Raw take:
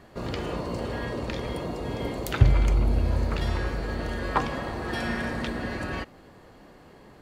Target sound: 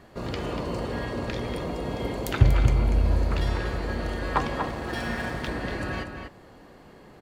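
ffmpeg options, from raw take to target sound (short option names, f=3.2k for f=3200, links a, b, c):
-filter_complex "[0:a]asplit=2[a][b];[b]adelay=239.1,volume=-6dB,highshelf=f=4k:g=-5.38[c];[a][c]amix=inputs=2:normalize=0,asettb=1/sr,asplit=3[d][e][f];[d]atrim=end=4.684[g];[e]atrim=start=4.68:end=5.48,asetpts=PTS-STARTPTS,afade=t=in:d=0.004:c=qsin,afade=t=out:st=0.796:d=0.004:c=qsin,aeval=exprs='sgn(val(0))*max(abs(val(0))-0.00631,0)':c=same[h];[f]atrim=start=5.476[i];[g][h]acrossfade=d=0.004:c1=hsin:c2=qsin[j];[j][i]acrossfade=d=0.004:c1=qsin:c2=hsin"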